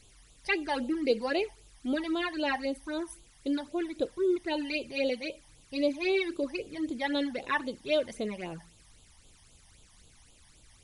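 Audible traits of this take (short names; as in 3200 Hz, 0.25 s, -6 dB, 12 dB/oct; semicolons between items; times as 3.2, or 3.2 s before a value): a quantiser's noise floor 10-bit, dither triangular; phasing stages 12, 3.8 Hz, lowest notch 410–1900 Hz; MP3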